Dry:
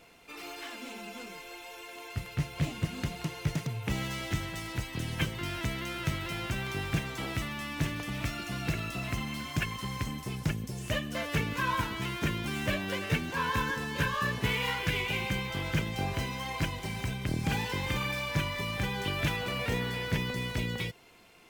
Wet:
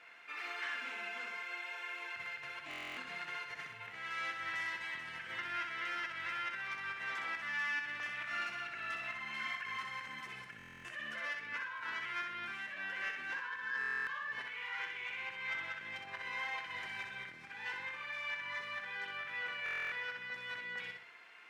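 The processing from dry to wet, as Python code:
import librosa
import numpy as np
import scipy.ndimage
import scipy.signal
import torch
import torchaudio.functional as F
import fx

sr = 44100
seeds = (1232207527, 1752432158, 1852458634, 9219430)

p1 = fx.over_compress(x, sr, threshold_db=-38.0, ratio=-1.0)
p2 = fx.bandpass_q(p1, sr, hz=1700.0, q=2.7)
p3 = 10.0 ** (-33.5 / 20.0) * np.tanh(p2 / 10.0 ** (-33.5 / 20.0))
p4 = p3 + fx.echo_feedback(p3, sr, ms=63, feedback_pct=37, wet_db=-5.0, dry=0)
p5 = fx.buffer_glitch(p4, sr, at_s=(2.69, 10.57, 13.79, 19.64), block=1024, repeats=11)
y = p5 * 10.0 ** (4.0 / 20.0)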